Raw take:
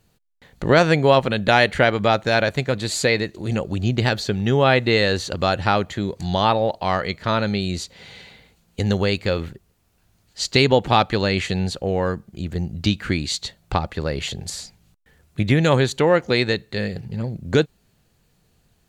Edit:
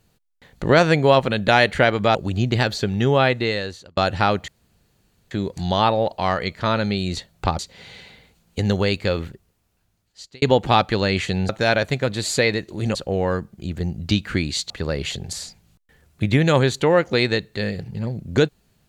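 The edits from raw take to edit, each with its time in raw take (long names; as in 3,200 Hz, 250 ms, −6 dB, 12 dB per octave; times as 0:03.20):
0:02.15–0:03.61: move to 0:11.70
0:04.58–0:05.43: fade out
0:05.94: splice in room tone 0.83 s
0:09.43–0:10.63: fade out
0:13.45–0:13.87: move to 0:07.80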